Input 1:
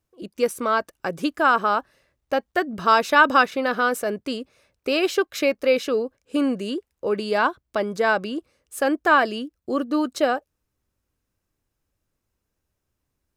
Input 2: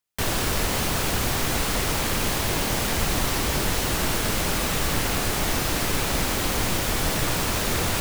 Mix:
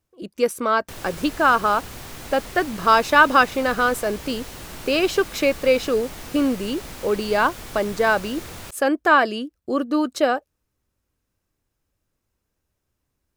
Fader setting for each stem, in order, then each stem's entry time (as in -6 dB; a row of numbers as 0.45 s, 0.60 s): +1.5 dB, -13.0 dB; 0.00 s, 0.70 s